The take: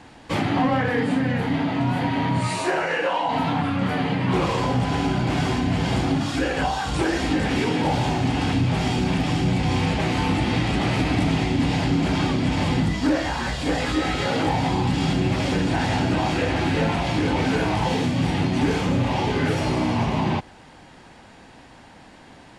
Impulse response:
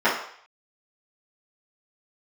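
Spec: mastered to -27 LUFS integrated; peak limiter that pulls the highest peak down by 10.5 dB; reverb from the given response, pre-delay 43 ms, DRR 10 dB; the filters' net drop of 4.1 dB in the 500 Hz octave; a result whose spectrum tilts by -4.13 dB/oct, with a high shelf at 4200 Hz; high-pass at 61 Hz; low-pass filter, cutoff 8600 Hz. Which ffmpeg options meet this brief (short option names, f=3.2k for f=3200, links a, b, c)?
-filter_complex "[0:a]highpass=61,lowpass=8.6k,equalizer=f=500:t=o:g=-5.5,highshelf=f=4.2k:g=8,alimiter=limit=-21dB:level=0:latency=1,asplit=2[a][b];[1:a]atrim=start_sample=2205,adelay=43[c];[b][c]afir=irnorm=-1:irlink=0,volume=-30dB[d];[a][d]amix=inputs=2:normalize=0,volume=2dB"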